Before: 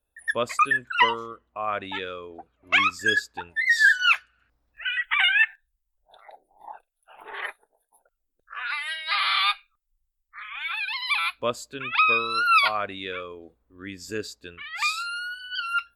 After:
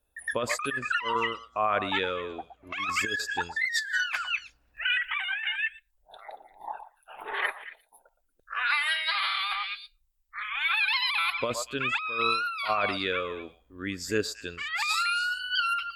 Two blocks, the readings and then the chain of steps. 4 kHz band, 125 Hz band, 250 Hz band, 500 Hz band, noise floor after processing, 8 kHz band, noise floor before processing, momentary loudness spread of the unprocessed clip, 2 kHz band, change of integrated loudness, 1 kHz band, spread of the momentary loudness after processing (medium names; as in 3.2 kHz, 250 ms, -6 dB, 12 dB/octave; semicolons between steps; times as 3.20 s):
-2.5 dB, no reading, +1.5 dB, +0.5 dB, -71 dBFS, +1.5 dB, -78 dBFS, 17 LU, -4.5 dB, -4.5 dB, -4.0 dB, 16 LU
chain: repeats whose band climbs or falls 116 ms, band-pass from 870 Hz, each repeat 1.4 oct, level -10 dB; compressor with a negative ratio -28 dBFS, ratio -1